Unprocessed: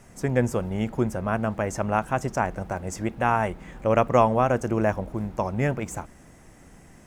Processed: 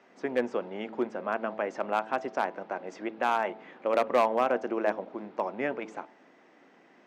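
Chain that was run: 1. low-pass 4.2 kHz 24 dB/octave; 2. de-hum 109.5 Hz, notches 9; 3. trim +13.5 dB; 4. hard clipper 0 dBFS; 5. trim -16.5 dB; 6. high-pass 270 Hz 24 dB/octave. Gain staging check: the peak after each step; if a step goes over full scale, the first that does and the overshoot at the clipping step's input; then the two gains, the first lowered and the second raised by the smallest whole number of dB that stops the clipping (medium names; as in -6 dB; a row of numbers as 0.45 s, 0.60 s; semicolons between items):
-5.5 dBFS, -5.0 dBFS, +8.5 dBFS, 0.0 dBFS, -16.5 dBFS, -10.5 dBFS; step 3, 8.5 dB; step 3 +4.5 dB, step 5 -7.5 dB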